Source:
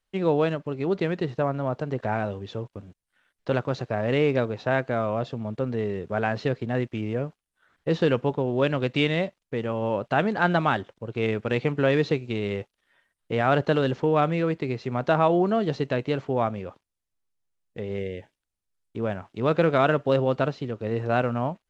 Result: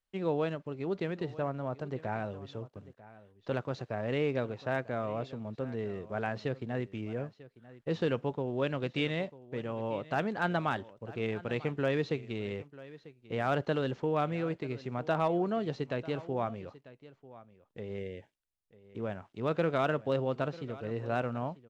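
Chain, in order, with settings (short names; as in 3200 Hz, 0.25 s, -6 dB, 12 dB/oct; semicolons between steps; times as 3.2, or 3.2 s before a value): hard clip -10.5 dBFS, distortion -33 dB; echo 0.944 s -18.5 dB; gain -8.5 dB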